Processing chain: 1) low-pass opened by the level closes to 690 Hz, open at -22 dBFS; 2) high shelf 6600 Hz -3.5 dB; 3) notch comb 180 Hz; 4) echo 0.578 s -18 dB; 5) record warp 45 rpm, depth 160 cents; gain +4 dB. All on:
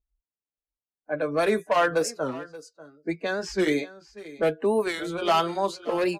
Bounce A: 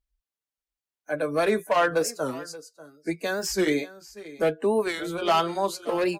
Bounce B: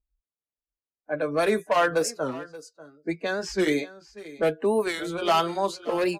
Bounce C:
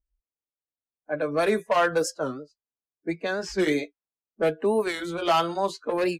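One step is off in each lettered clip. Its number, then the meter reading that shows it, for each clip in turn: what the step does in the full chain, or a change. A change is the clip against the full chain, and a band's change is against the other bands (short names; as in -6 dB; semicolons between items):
1, 8 kHz band +4.0 dB; 2, 8 kHz band +2.0 dB; 4, momentary loudness spread change -4 LU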